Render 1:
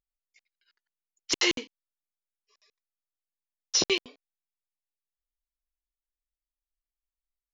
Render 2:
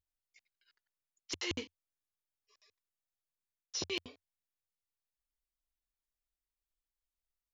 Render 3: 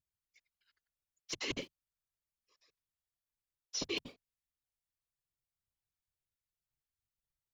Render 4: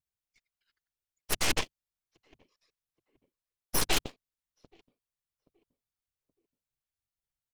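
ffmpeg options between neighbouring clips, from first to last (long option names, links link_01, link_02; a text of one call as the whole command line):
ffmpeg -i in.wav -af "equalizer=frequency=87:width=2.4:gain=14.5,areverse,acompressor=threshold=-32dB:ratio=10,areverse,volume=-2.5dB" out.wav
ffmpeg -i in.wav -filter_complex "[0:a]asplit=2[link_01][link_02];[link_02]aeval=exprs='val(0)*gte(abs(val(0)),0.00266)':channel_layout=same,volume=-7.5dB[link_03];[link_01][link_03]amix=inputs=2:normalize=0,afftfilt=real='hypot(re,im)*cos(2*PI*random(0))':imag='hypot(re,im)*sin(2*PI*random(1))':win_size=512:overlap=0.75,volume=2.5dB" out.wav
ffmpeg -i in.wav -filter_complex "[0:a]asplit=2[link_01][link_02];[link_02]adelay=825,lowpass=frequency=1200:poles=1,volume=-21dB,asplit=2[link_03][link_04];[link_04]adelay=825,lowpass=frequency=1200:poles=1,volume=0.41,asplit=2[link_05][link_06];[link_06]adelay=825,lowpass=frequency=1200:poles=1,volume=0.41[link_07];[link_01][link_03][link_05][link_07]amix=inputs=4:normalize=0,aeval=exprs='0.0708*(cos(1*acos(clip(val(0)/0.0708,-1,1)))-cos(1*PI/2))+0.00794*(cos(3*acos(clip(val(0)/0.0708,-1,1)))-cos(3*PI/2))+0.00251*(cos(7*acos(clip(val(0)/0.0708,-1,1)))-cos(7*PI/2))+0.0316*(cos(8*acos(clip(val(0)/0.0708,-1,1)))-cos(8*PI/2))':channel_layout=same,volume=5.5dB" out.wav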